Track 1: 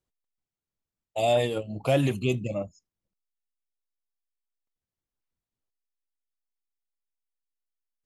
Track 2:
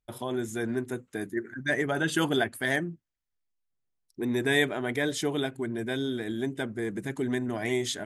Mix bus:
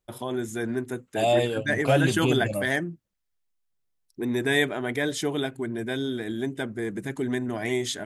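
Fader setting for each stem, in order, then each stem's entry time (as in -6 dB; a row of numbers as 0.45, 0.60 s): +1.0, +1.5 dB; 0.00, 0.00 s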